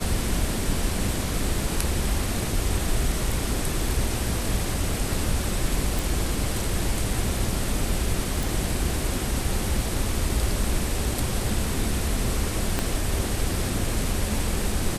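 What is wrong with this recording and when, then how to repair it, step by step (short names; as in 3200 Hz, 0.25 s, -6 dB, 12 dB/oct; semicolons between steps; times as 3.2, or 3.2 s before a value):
5.99 pop
8.43 pop
12.79 pop -9 dBFS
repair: de-click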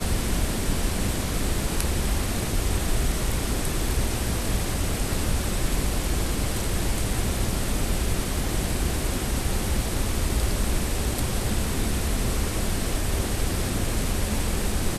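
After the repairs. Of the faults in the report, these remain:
12.79 pop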